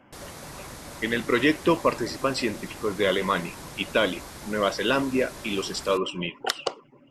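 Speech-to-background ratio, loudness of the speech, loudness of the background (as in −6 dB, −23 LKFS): 15.0 dB, −26.0 LKFS, −41.0 LKFS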